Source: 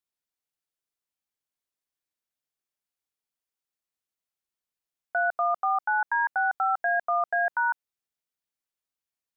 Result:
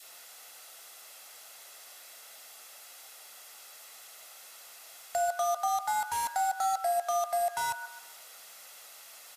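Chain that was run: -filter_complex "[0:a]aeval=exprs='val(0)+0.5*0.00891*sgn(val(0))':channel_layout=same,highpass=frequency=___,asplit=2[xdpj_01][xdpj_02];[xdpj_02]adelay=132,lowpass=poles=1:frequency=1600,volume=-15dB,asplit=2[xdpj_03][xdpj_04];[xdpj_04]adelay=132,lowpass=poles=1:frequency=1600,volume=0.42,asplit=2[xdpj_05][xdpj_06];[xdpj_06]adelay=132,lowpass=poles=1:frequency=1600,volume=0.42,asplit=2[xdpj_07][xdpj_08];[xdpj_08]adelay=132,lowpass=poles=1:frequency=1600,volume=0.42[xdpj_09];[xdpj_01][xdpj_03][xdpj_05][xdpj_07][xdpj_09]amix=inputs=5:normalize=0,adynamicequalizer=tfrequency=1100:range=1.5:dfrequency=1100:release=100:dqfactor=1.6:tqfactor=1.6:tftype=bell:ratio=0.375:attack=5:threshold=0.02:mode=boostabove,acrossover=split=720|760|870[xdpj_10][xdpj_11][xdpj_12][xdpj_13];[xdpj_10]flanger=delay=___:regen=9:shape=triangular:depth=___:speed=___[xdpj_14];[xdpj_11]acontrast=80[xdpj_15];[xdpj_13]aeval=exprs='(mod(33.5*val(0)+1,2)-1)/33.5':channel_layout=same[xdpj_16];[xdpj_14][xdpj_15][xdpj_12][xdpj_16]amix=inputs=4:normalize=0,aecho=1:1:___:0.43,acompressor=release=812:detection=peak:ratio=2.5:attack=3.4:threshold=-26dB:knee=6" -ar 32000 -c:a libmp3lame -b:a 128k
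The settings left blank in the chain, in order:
400, 6.4, 9.8, 0.8, 1.5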